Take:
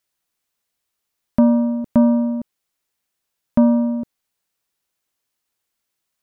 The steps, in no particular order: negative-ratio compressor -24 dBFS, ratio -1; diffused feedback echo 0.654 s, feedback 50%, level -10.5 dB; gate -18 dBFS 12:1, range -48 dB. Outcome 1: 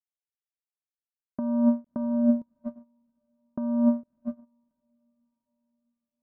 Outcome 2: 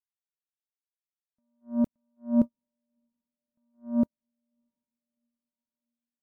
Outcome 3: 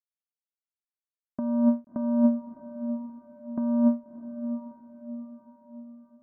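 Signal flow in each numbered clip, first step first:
diffused feedback echo > gate > negative-ratio compressor; negative-ratio compressor > diffused feedback echo > gate; gate > negative-ratio compressor > diffused feedback echo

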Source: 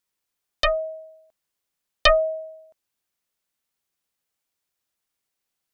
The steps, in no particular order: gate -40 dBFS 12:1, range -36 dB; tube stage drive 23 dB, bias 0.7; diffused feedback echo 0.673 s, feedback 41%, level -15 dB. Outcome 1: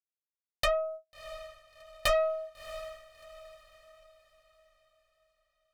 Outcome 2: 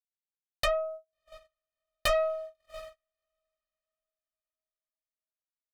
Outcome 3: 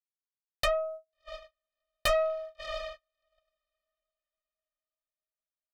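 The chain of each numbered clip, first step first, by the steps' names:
tube stage > gate > diffused feedback echo; tube stage > diffused feedback echo > gate; diffused feedback echo > tube stage > gate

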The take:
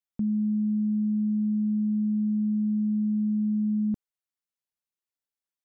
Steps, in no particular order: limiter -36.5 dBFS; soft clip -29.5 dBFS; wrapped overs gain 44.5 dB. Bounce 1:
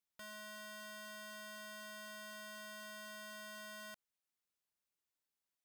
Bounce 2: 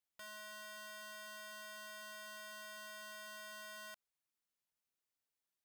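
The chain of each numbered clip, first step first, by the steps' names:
limiter > wrapped overs > soft clip; limiter > soft clip > wrapped overs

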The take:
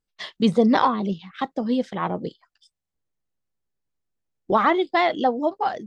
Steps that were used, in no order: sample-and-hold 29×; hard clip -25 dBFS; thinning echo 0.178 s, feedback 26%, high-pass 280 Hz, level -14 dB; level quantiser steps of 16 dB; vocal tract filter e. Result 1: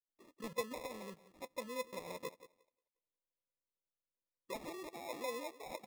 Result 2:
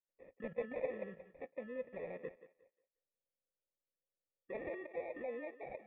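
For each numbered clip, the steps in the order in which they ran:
thinning echo > level quantiser > hard clip > vocal tract filter > sample-and-hold; level quantiser > sample-and-hold > thinning echo > hard clip > vocal tract filter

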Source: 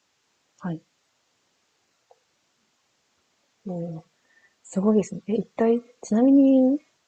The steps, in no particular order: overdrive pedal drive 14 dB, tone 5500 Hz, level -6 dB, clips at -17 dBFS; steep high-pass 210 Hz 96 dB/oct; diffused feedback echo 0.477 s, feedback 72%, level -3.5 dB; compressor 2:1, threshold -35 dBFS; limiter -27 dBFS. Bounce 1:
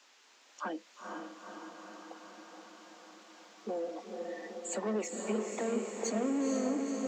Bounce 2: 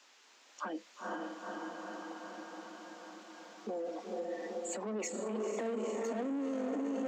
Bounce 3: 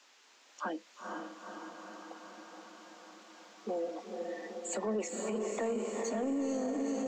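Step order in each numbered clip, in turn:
overdrive pedal > compressor > steep high-pass > limiter > diffused feedback echo; diffused feedback echo > overdrive pedal > limiter > compressor > steep high-pass; compressor > steep high-pass > overdrive pedal > diffused feedback echo > limiter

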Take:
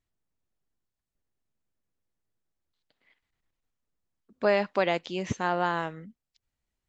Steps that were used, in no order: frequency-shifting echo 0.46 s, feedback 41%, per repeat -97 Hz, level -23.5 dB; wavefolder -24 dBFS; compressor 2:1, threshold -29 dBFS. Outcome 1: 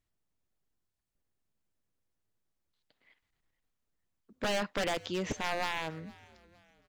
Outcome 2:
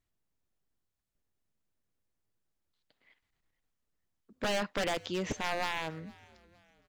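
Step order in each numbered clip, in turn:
wavefolder > frequency-shifting echo > compressor; wavefolder > compressor > frequency-shifting echo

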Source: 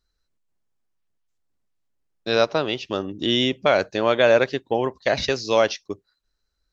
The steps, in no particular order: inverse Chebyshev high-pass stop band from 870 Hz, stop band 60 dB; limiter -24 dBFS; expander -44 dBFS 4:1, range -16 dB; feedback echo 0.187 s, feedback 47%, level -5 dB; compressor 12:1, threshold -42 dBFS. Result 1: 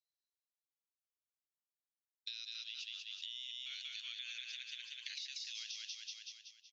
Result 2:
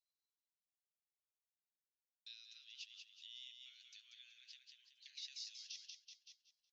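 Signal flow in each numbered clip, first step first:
inverse Chebyshev high-pass > expander > feedback echo > limiter > compressor; limiter > feedback echo > compressor > expander > inverse Chebyshev high-pass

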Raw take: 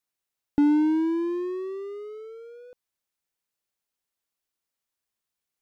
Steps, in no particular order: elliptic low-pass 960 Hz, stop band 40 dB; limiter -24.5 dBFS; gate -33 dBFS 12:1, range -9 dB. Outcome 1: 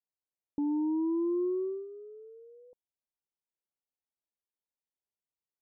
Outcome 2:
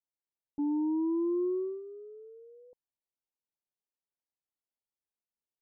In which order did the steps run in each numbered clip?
gate > limiter > elliptic low-pass; limiter > elliptic low-pass > gate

